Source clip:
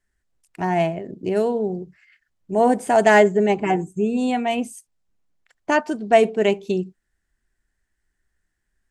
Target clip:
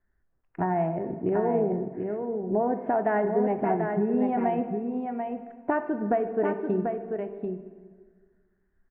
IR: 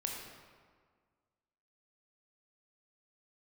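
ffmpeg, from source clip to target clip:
-filter_complex "[0:a]acompressor=threshold=-25dB:ratio=6,lowpass=f=1.6k:w=0.5412,lowpass=f=1.6k:w=1.3066,aecho=1:1:739:0.531,asplit=2[a][b];[1:a]atrim=start_sample=2205[c];[b][c]afir=irnorm=-1:irlink=0,volume=-4.5dB[d];[a][d]amix=inputs=2:normalize=0,volume=-1.5dB"

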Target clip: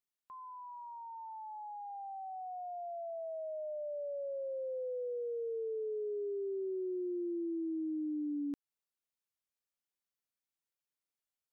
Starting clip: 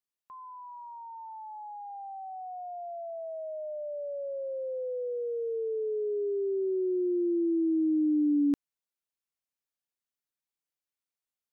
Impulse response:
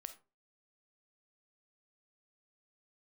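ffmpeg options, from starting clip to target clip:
-af "acompressor=threshold=-33dB:ratio=6,volume=-3dB"

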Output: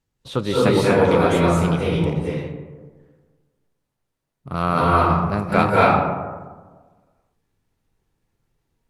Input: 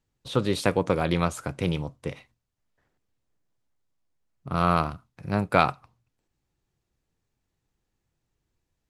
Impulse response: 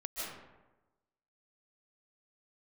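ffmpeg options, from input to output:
-filter_complex "[0:a]acrossover=split=2800[a][b];[b]asoftclip=type=tanh:threshold=-31dB[c];[a][c]amix=inputs=2:normalize=0[d];[1:a]atrim=start_sample=2205,asetrate=31752,aresample=44100[e];[d][e]afir=irnorm=-1:irlink=0,volume=4dB" -ar 48000 -c:a libopus -b:a 48k

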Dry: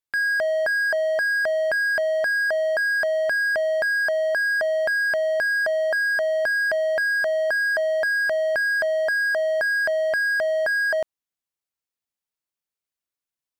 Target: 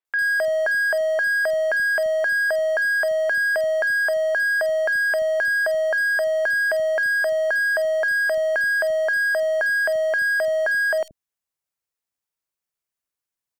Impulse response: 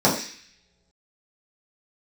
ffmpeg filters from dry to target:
-filter_complex "[0:a]aeval=exprs='0.141*(cos(1*acos(clip(val(0)/0.141,-1,1)))-cos(1*PI/2))+0.002*(cos(2*acos(clip(val(0)/0.141,-1,1)))-cos(2*PI/2))+0.00355*(cos(5*acos(clip(val(0)/0.141,-1,1)))-cos(5*PI/2))':c=same,acrossover=split=260|3500[a][b][c];[c]adelay=50[d];[a]adelay=80[e];[e][b][d]amix=inputs=3:normalize=0,volume=1.5dB"

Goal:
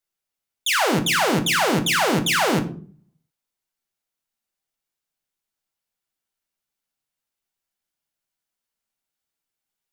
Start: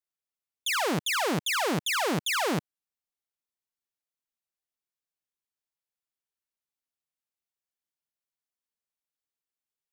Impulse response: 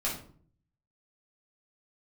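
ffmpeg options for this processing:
-filter_complex "[0:a]asplit=2[a][b];[1:a]atrim=start_sample=2205,asetrate=52920,aresample=44100[c];[b][c]afir=irnorm=-1:irlink=0,volume=-7dB[d];[a][d]amix=inputs=2:normalize=0,volume=4.5dB"

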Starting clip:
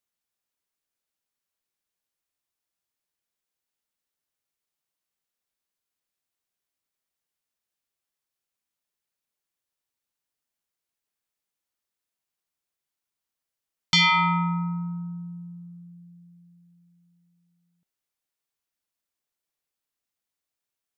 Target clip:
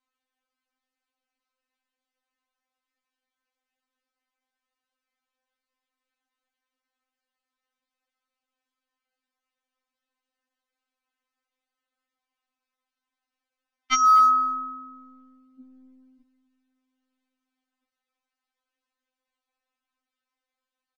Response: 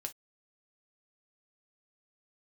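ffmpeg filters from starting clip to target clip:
-filter_complex "[0:a]lowpass=1.3k,asettb=1/sr,asplit=3[a][b][c];[a]atrim=end=15.604[d];[b]atrim=start=15.6:end=16.21,asetpts=PTS-STARTPTS,afade=t=in:d=0.004:c=qsin,afade=t=out:st=0.606:d=0.004:c=qsin,equalizer=f=170:w=0.4:g=10[e];[c]atrim=start=16.206[f];[d][e]acrossfade=d=0.004:c1=hsin:c2=qsin[g];[g][f]acrossfade=d=0.004:c1=qsin:c2=hsin,acrossover=split=360|790[h][i][j];[i]volume=32.5dB,asoftclip=hard,volume=-32.5dB[k];[h][k][j]amix=inputs=3:normalize=0,aecho=1:1:248:0.0794,crystalizer=i=9.5:c=0,afftfilt=real='re*3.46*eq(mod(b,12),0)':imag='im*3.46*eq(mod(b,12),0)':win_size=2048:overlap=0.75,volume=7dB"

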